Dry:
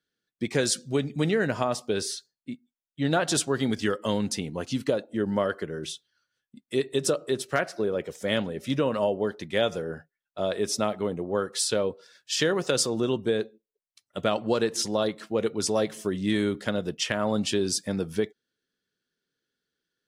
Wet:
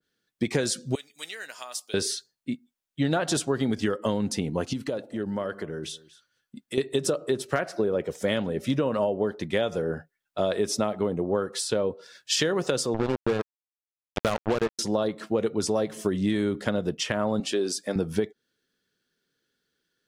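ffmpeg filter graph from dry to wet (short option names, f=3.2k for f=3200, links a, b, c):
-filter_complex "[0:a]asettb=1/sr,asplit=3[a][b][c];[a]atrim=end=0.954[d];[b]atrim=start=0.95:end=1.94,asetpts=PTS-STARTPTS,afade=t=in:d=0.004:c=qsin,afade=t=out:st=0.986:d=0.004:c=qsin,highpass=f=540:p=1,aderivative[e];[c]atrim=start=1.936[f];[d][e]acrossfade=d=0.004:c1=hsin:c2=qsin[g];[g][f]acrossfade=d=0.004:c1=qsin:c2=hsin,asettb=1/sr,asplit=3[h][i][j];[h]atrim=end=4.734[k];[i]atrim=start=4.73:end=6.78,asetpts=PTS-STARTPTS,afade=t=in:d=0.004:c=qsin,afade=t=out:st=2.046:d=0.004:c=qsin,acompressor=threshold=-40dB:ratio=2:attack=3.2:release=140:knee=1:detection=peak,aecho=1:1:237:0.0891,atrim=end_sample=90405[l];[j]atrim=start=6.776[m];[k][l]acrossfade=d=0.004:c1=hsin:c2=qsin[n];[n][m]acrossfade=d=0.004:c1=qsin:c2=hsin,asettb=1/sr,asplit=3[o][p][q];[o]atrim=end=12.944[r];[p]atrim=start=12.94:end=14.79,asetpts=PTS-STARTPTS,afade=t=in:d=0.004:c=qsin,afade=t=out:st=1.846:d=0.004:c=qsin,lowpass=3k,acrusher=bits=3:mix=0:aa=0.5[s];[q]atrim=start=14.786[t];[r][s]acrossfade=d=0.004:c1=hsin:c2=qsin[u];[u][t]acrossfade=d=0.004:c1=qsin:c2=hsin,asettb=1/sr,asplit=3[v][w][x];[v]atrim=end=17.404[y];[w]atrim=start=17.4:end=17.96,asetpts=PTS-STARTPTS,afade=t=in:d=0.004:c=qsin,afade=t=out:st=0.556:d=0.004:c=qsin,highpass=350,bandreject=f=940:w=7.7[z];[x]atrim=start=17.956[aa];[y][z]acrossfade=d=0.004:c1=hsin:c2=qsin[ab];[ab][aa]acrossfade=d=0.004:c1=qsin:c2=hsin,acompressor=threshold=-27dB:ratio=6,adynamicequalizer=threshold=0.00398:dfrequency=1500:dqfactor=0.7:tfrequency=1500:tqfactor=0.7:attack=5:release=100:ratio=0.375:range=3.5:mode=cutabove:tftype=highshelf,volume=6dB"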